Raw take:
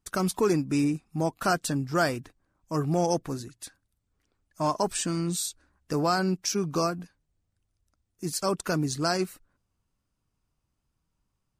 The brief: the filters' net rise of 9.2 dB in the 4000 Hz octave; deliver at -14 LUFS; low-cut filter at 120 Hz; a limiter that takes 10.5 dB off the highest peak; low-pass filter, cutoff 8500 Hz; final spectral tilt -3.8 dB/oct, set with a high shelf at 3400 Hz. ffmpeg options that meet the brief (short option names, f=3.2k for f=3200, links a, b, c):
-af "highpass=120,lowpass=8.5k,highshelf=f=3.4k:g=4.5,equalizer=f=4k:t=o:g=8.5,volume=15.5dB,alimiter=limit=-2dB:level=0:latency=1"